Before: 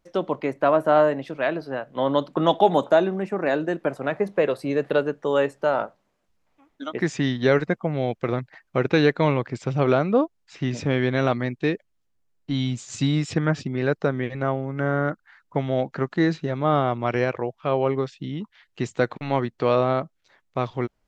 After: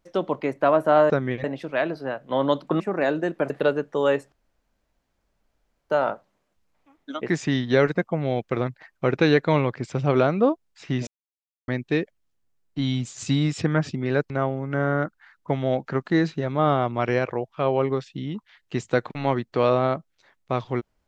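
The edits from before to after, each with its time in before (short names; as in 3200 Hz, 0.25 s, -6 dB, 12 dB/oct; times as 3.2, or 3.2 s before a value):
2.46–3.25 cut
3.95–4.8 cut
5.62 insert room tone 1.58 s
10.79–11.4 mute
14.02–14.36 move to 1.1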